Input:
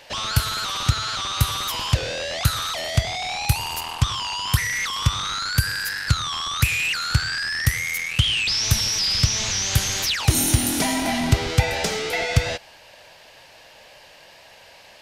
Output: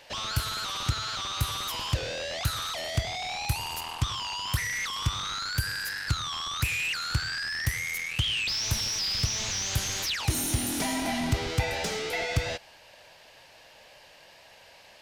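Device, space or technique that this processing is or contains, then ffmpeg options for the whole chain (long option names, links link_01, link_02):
saturation between pre-emphasis and de-emphasis: -af "highshelf=frequency=2900:gain=12,asoftclip=type=tanh:threshold=-10dB,highshelf=frequency=2900:gain=-12,volume=-5.5dB"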